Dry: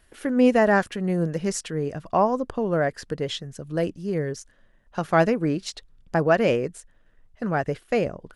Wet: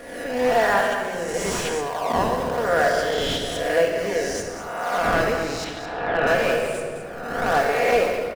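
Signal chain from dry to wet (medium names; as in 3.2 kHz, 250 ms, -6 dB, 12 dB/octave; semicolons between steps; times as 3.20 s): reverse spectral sustain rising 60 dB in 1.17 s; high-pass 610 Hz 12 dB/octave; in parallel at -4.5 dB: decimation with a swept rate 22×, swing 160% 1 Hz; 5.64–6.27 s: on the sum: steep low-pass 3.5 kHz; on a send: delay 213 ms -12 dB; on the sum: simulated room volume 2600 m³, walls mixed, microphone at 1.8 m; level rider gain up to 11.5 dB; slew-rate limiter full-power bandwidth 380 Hz; trim -5 dB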